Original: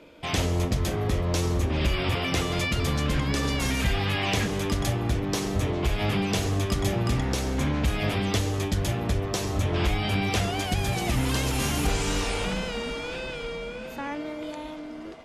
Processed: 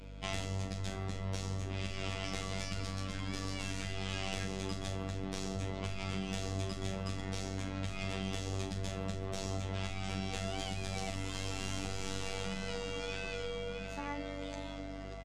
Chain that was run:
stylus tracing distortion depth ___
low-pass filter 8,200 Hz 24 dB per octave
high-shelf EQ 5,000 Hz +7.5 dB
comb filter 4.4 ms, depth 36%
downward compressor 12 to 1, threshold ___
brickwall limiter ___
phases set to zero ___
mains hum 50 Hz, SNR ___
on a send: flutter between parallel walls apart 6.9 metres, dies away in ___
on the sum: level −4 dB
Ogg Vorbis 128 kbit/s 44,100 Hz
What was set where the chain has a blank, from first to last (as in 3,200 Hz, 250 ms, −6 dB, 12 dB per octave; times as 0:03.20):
0.15 ms, −29 dBFS, −22 dBFS, 95.9 Hz, 12 dB, 0.29 s